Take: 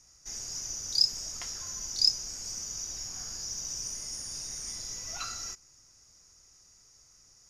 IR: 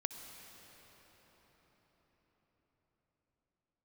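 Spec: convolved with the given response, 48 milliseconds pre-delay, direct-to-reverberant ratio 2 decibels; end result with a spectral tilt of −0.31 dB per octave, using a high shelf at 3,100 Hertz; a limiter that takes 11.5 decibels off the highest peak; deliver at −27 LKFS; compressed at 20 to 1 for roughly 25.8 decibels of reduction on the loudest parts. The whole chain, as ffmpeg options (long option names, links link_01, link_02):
-filter_complex "[0:a]highshelf=frequency=3100:gain=8,acompressor=threshold=-38dB:ratio=20,alimiter=level_in=14.5dB:limit=-24dB:level=0:latency=1,volume=-14.5dB,asplit=2[link_01][link_02];[1:a]atrim=start_sample=2205,adelay=48[link_03];[link_02][link_03]afir=irnorm=-1:irlink=0,volume=-2dB[link_04];[link_01][link_04]amix=inputs=2:normalize=0,volume=16.5dB"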